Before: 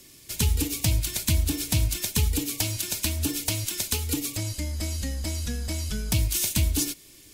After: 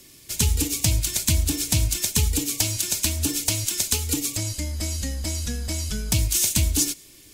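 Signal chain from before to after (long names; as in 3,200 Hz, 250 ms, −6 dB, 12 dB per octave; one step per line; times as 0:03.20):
dynamic equaliser 7,000 Hz, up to +6 dB, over −42 dBFS, Q 1.2
level +1.5 dB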